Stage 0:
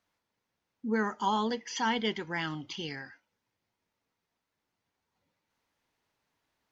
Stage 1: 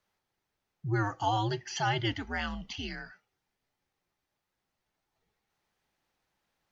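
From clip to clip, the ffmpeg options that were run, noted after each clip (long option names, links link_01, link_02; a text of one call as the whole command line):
ffmpeg -i in.wav -af "afreqshift=-100" out.wav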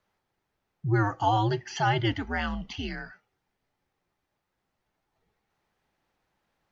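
ffmpeg -i in.wav -af "highshelf=frequency=3000:gain=-9,volume=5.5dB" out.wav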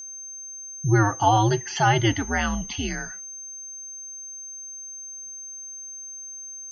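ffmpeg -i in.wav -af "aeval=exprs='val(0)+0.00891*sin(2*PI*6300*n/s)':channel_layout=same,volume=5.5dB" out.wav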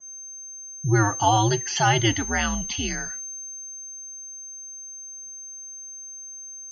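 ffmpeg -i in.wav -af "adynamicequalizer=threshold=0.0126:dfrequency=2600:dqfactor=0.7:tfrequency=2600:tqfactor=0.7:attack=5:release=100:ratio=0.375:range=3.5:mode=boostabove:tftype=highshelf,volume=-1dB" out.wav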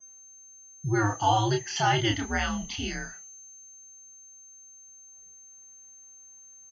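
ffmpeg -i in.wav -filter_complex "[0:a]asplit=2[link_01][link_02];[link_02]adelay=29,volume=-3.5dB[link_03];[link_01][link_03]amix=inputs=2:normalize=0,volume=-5.5dB" out.wav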